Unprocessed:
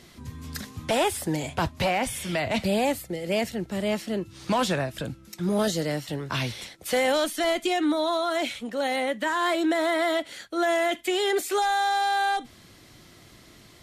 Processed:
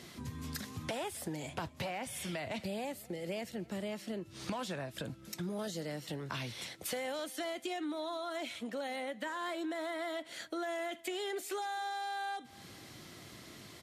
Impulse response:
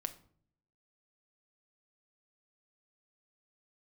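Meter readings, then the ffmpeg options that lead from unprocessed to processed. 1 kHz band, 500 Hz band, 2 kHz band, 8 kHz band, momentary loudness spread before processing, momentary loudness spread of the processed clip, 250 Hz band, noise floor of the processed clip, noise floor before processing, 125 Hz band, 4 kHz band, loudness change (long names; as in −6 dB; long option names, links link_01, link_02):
−14.0 dB, −13.5 dB, −13.5 dB, −10.5 dB, 9 LU, 6 LU, −12.5 dB, −55 dBFS, −52 dBFS, −11.0 dB, −12.5 dB, −13.5 dB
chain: -filter_complex "[0:a]highpass=90,acompressor=threshold=-38dB:ratio=5,asplit=2[link_01][link_02];[link_02]adelay=260,lowpass=frequency=4600:poles=1,volume=-23dB,asplit=2[link_03][link_04];[link_04]adelay=260,lowpass=frequency=4600:poles=1,volume=0.44,asplit=2[link_05][link_06];[link_06]adelay=260,lowpass=frequency=4600:poles=1,volume=0.44[link_07];[link_03][link_05][link_07]amix=inputs=3:normalize=0[link_08];[link_01][link_08]amix=inputs=2:normalize=0"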